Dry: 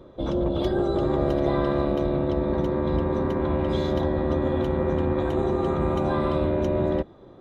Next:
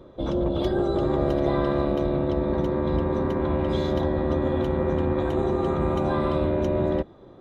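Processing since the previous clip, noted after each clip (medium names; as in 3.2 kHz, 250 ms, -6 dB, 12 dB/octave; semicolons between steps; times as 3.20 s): no audible change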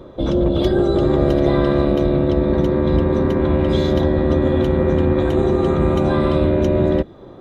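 dynamic bell 910 Hz, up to -6 dB, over -41 dBFS, Q 1.2; trim +8.5 dB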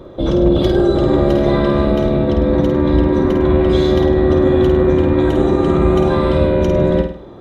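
flutter echo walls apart 8.8 m, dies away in 0.5 s; trim +2 dB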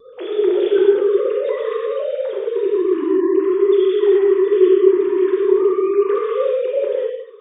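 formants replaced by sine waves; vibrato 3.6 Hz 58 cents; gated-style reverb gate 230 ms flat, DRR -3 dB; trim -8 dB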